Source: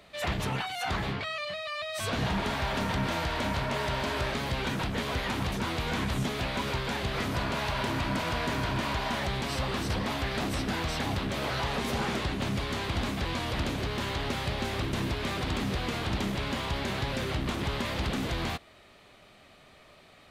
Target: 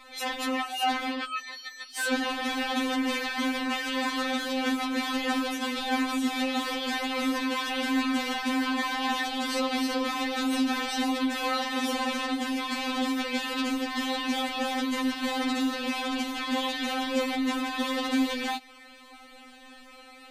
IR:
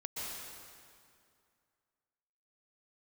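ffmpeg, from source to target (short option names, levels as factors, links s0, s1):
-filter_complex "[0:a]asplit=2[s0][s1];[s1]acompressor=threshold=0.0112:ratio=10,volume=0.891[s2];[s0][s2]amix=inputs=2:normalize=0,afftfilt=real='re*3.46*eq(mod(b,12),0)':imag='im*3.46*eq(mod(b,12),0)':win_size=2048:overlap=0.75,volume=1.5"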